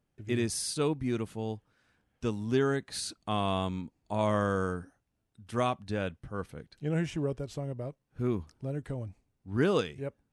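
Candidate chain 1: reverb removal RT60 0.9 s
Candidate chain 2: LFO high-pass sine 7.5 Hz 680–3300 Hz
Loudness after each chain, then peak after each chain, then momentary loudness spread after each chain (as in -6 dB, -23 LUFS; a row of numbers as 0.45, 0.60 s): -34.0, -35.5 LUFS; -15.0, -13.5 dBFS; 11, 18 LU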